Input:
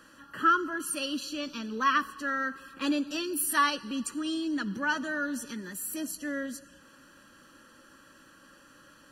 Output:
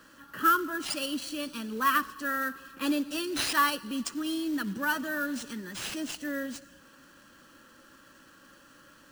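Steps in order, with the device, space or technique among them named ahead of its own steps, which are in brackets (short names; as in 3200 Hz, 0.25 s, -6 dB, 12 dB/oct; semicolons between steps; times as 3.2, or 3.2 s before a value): early companding sampler (sample-rate reducer 14000 Hz, jitter 0%; companded quantiser 6-bit)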